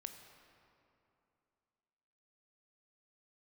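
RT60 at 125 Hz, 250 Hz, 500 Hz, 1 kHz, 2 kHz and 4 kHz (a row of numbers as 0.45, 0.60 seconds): 2.8, 2.9, 2.8, 2.7, 2.3, 1.7 seconds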